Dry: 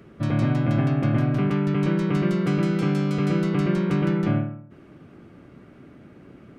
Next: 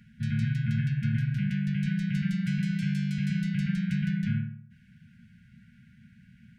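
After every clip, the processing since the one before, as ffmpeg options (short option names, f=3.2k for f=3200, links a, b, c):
-af "afftfilt=real='re*(1-between(b*sr/4096,240,1400))':imag='im*(1-between(b*sr/4096,240,1400))':win_size=4096:overlap=0.75,volume=-4.5dB"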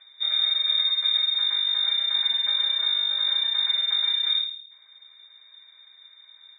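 -af "lowpass=f=3.2k:t=q:w=0.5098,lowpass=f=3.2k:t=q:w=0.6013,lowpass=f=3.2k:t=q:w=0.9,lowpass=f=3.2k:t=q:w=2.563,afreqshift=-3800,acontrast=58,volume=-2.5dB"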